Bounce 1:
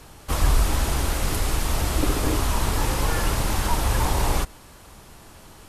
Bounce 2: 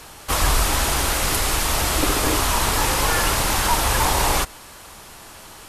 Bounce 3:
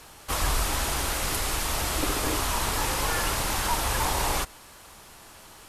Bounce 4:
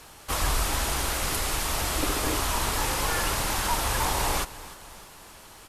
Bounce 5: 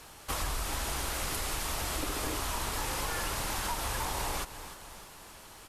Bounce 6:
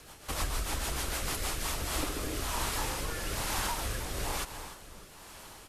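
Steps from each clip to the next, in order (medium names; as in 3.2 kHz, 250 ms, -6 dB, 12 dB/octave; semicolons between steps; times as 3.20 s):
bass shelf 440 Hz -10.5 dB; trim +8.5 dB
bit crusher 11-bit; trim -7 dB
feedback delay 305 ms, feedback 52%, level -18 dB
compression 4:1, threshold -28 dBFS, peak gain reduction 7 dB; trim -2.5 dB
rotary cabinet horn 6.7 Hz, later 1.1 Hz, at 1.25 s; trim +2.5 dB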